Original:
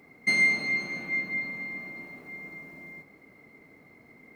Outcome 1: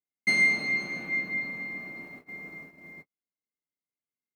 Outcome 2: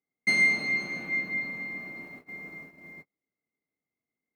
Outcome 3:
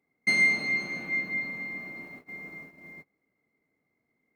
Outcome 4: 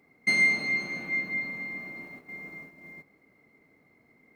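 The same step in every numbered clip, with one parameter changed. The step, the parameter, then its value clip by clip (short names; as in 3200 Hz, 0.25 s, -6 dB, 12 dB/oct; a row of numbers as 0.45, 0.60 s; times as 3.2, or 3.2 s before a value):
gate, range: -50, -37, -23, -8 dB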